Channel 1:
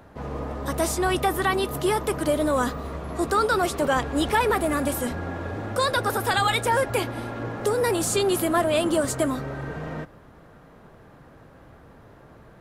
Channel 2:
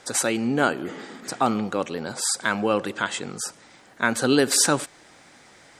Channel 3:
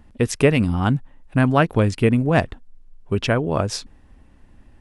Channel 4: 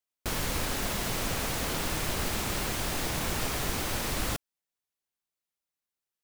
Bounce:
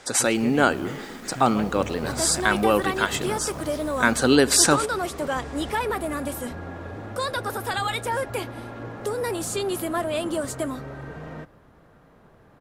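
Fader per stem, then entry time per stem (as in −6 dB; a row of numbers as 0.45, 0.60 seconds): −4.5, +2.0, −18.5, −18.5 decibels; 1.40, 0.00, 0.00, 0.00 seconds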